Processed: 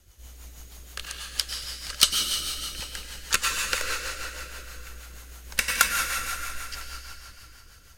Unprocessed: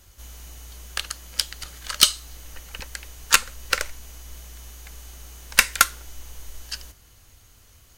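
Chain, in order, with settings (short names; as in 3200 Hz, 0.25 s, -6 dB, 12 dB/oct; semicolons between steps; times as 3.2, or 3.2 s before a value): 0.52–1.45 crackle 190/s -56 dBFS; plate-style reverb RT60 3.5 s, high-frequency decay 0.85×, pre-delay 85 ms, DRR -0.5 dB; rotary speaker horn 6.3 Hz; gain -3 dB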